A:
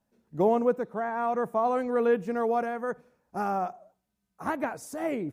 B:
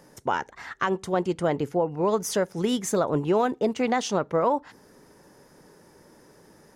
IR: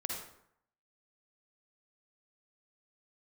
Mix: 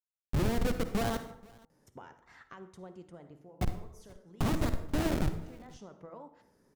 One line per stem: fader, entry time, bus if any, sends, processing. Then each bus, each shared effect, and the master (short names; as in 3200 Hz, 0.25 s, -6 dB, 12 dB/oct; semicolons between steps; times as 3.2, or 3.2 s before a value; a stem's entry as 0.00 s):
-0.5 dB, 0.00 s, muted 1.17–3.61, send -5 dB, echo send -21.5 dB, compressor 20:1, threshold -31 dBFS, peak gain reduction 14 dB; transient shaper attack +7 dB, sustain +1 dB; Schmitt trigger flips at -32.5 dBFS
-19.0 dB, 1.70 s, send -10 dB, no echo send, compressor 3:1, threshold -32 dBFS, peak gain reduction 10.5 dB; de-hum 121.2 Hz, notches 32; auto duck -13 dB, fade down 0.65 s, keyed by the first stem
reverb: on, RT60 0.70 s, pre-delay 42 ms
echo: echo 0.481 s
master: low shelf 260 Hz +8 dB; de-hum 161.4 Hz, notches 5